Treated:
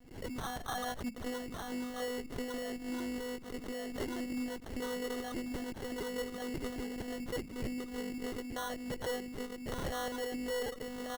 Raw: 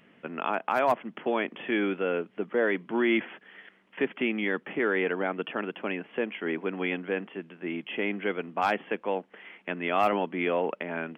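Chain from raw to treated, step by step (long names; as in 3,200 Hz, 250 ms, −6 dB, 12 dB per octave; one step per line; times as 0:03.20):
rippled gain that drifts along the octave scale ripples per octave 1.3, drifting −0.68 Hz, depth 16 dB
spectral tilt −4.5 dB per octave
single-tap delay 1,148 ms −5 dB
downward compressor, threshold −18 dBFS, peak gain reduction 6.5 dB
one-pitch LPC vocoder at 8 kHz 250 Hz
noise gate with hold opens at −40 dBFS
decimation without filtering 18×
tube saturation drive 14 dB, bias 0.65
gain into a clipping stage and back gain 25.5 dB
background raised ahead of every attack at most 91 dB per second
level −7 dB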